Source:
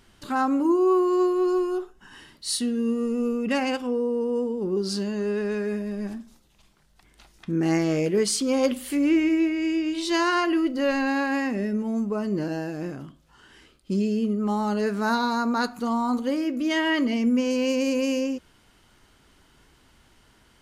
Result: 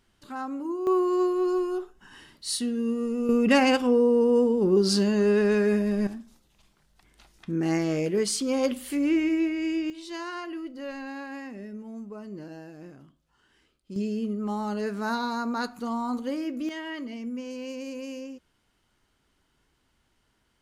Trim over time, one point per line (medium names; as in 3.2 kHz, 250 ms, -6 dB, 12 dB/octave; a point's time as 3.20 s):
-10.5 dB
from 0.87 s -2.5 dB
from 3.29 s +5 dB
from 6.07 s -3 dB
from 9.90 s -13 dB
from 13.96 s -5 dB
from 16.69 s -12.5 dB